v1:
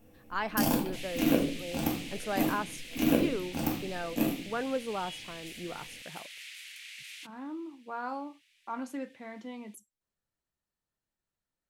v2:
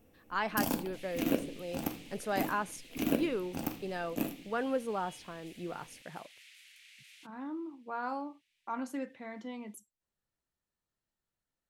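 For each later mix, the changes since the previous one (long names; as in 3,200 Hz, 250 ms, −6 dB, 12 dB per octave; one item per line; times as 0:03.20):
first sound: send −11.0 dB
second sound −11.0 dB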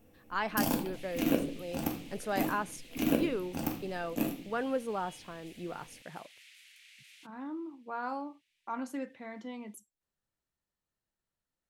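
first sound: send +6.0 dB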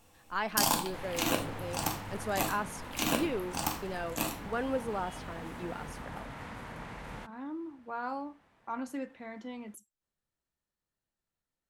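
first sound: add octave-band graphic EQ 250/500/1,000/4,000/8,000 Hz −7/−5/+12/+9/+11 dB
second sound: remove Butterworth high-pass 2,400 Hz 36 dB per octave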